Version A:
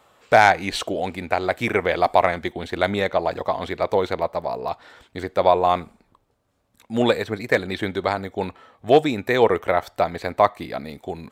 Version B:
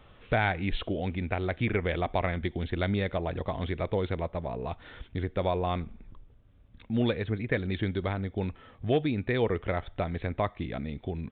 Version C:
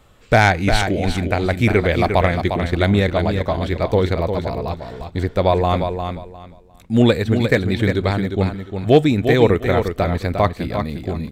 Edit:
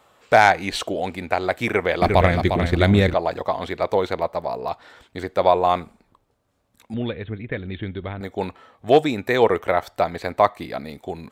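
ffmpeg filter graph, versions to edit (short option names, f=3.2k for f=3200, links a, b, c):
-filter_complex "[0:a]asplit=3[a][b][c];[a]atrim=end=2.022[d];[2:a]atrim=start=2.018:end=3.142[e];[b]atrim=start=3.138:end=6.942[f];[1:a]atrim=start=6.938:end=8.212[g];[c]atrim=start=8.208[h];[d][e]acrossfade=d=0.004:c1=hsin:c2=hsin[i];[i][f]acrossfade=d=0.004:c1=hsin:c2=hsin[j];[j][g]acrossfade=d=0.004:c1=hsin:c2=hsin[k];[k][h]acrossfade=d=0.004:c1=hsin:c2=hsin"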